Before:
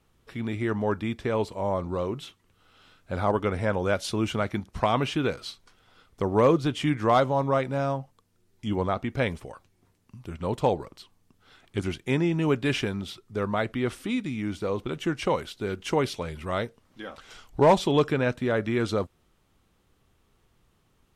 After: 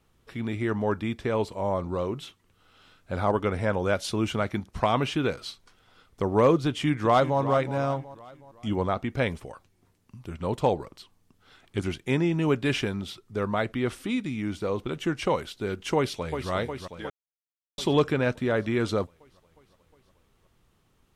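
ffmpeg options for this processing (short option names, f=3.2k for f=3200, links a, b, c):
-filter_complex "[0:a]asplit=2[a][b];[b]afade=t=in:st=6.67:d=0.01,afade=t=out:st=7.4:d=0.01,aecho=0:1:370|740|1110|1480:0.237137|0.106712|0.0480203|0.0216091[c];[a][c]amix=inputs=2:normalize=0,asplit=2[d][e];[e]afade=t=in:st=15.96:d=0.01,afade=t=out:st=16.51:d=0.01,aecho=0:1:360|720|1080|1440|1800|2160|2520|2880|3240|3600|3960:0.421697|0.295188|0.206631|0.144642|0.101249|0.0708745|0.0496122|0.0347285|0.02431|0.017017|0.0119119[f];[d][f]amix=inputs=2:normalize=0,asplit=3[g][h][i];[g]atrim=end=17.1,asetpts=PTS-STARTPTS,afade=t=out:st=17.096:d=0.004:c=hsin[j];[h]atrim=start=17.1:end=17.78,asetpts=PTS-STARTPTS,volume=0[k];[i]atrim=start=17.78,asetpts=PTS-STARTPTS,afade=t=in:d=0.004:c=hsin[l];[j][k][l]concat=n=3:v=0:a=1"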